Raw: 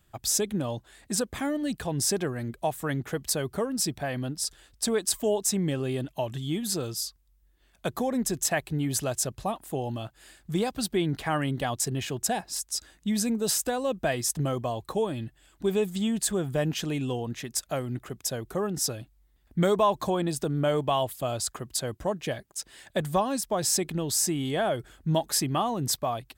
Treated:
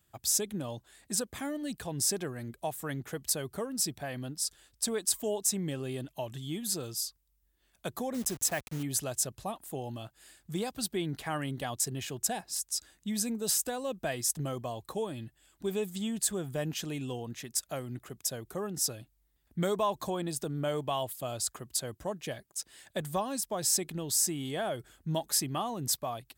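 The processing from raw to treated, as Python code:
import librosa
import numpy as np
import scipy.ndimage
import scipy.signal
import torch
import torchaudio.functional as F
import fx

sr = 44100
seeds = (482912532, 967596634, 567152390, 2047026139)

y = fx.delta_hold(x, sr, step_db=-35.0, at=(8.14, 8.83))
y = scipy.signal.sosfilt(scipy.signal.butter(2, 49.0, 'highpass', fs=sr, output='sos'), y)
y = fx.high_shelf(y, sr, hz=5100.0, db=7.5)
y = F.gain(torch.from_numpy(y), -7.0).numpy()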